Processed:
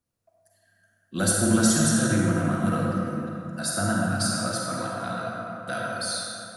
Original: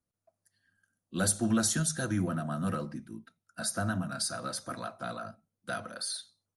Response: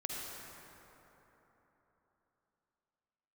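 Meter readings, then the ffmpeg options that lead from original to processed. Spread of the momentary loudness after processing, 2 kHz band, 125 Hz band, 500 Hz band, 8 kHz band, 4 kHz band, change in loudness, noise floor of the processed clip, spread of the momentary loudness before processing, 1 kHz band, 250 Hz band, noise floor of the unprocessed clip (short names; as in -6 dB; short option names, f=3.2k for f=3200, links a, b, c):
12 LU, +8.5 dB, +8.5 dB, +9.0 dB, +6.5 dB, +6.5 dB, +7.5 dB, -69 dBFS, 17 LU, +8.5 dB, +9.0 dB, under -85 dBFS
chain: -filter_complex "[1:a]atrim=start_sample=2205,asetrate=57330,aresample=44100[a];[0:a][a]afir=irnorm=-1:irlink=0,volume=8.5dB"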